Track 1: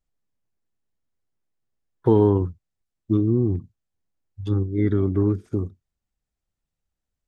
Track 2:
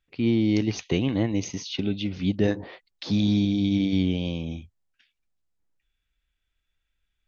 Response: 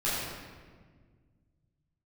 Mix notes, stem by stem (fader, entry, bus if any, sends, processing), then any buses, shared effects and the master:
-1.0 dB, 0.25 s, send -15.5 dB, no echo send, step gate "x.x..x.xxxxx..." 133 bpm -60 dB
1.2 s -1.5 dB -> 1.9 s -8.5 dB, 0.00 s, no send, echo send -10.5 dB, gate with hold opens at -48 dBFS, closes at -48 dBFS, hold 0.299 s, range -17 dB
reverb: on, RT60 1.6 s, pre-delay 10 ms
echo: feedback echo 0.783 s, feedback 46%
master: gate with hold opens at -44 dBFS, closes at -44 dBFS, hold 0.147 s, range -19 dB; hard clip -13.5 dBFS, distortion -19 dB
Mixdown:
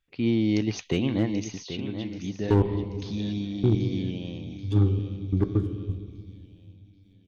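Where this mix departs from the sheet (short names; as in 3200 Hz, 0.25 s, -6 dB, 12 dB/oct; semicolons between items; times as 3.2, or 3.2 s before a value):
stem 2: missing gate with hold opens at -48 dBFS, closes at -48 dBFS, hold 0.299 s, range -17 dB; master: missing gate with hold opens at -44 dBFS, closes at -44 dBFS, hold 0.147 s, range -19 dB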